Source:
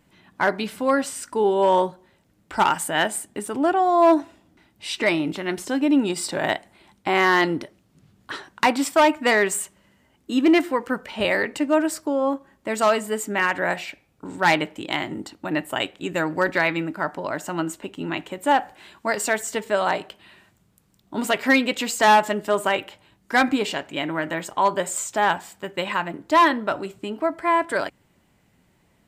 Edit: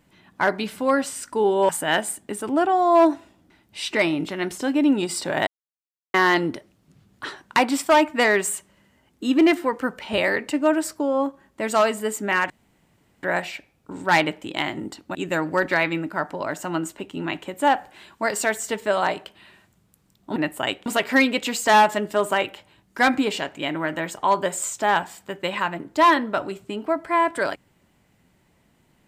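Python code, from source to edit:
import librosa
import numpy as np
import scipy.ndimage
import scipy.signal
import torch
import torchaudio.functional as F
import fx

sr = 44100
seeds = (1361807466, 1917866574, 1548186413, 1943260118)

y = fx.edit(x, sr, fx.cut(start_s=1.69, length_s=1.07),
    fx.silence(start_s=6.54, length_s=0.67),
    fx.insert_room_tone(at_s=13.57, length_s=0.73),
    fx.move(start_s=15.49, length_s=0.5, to_s=21.2), tone=tone)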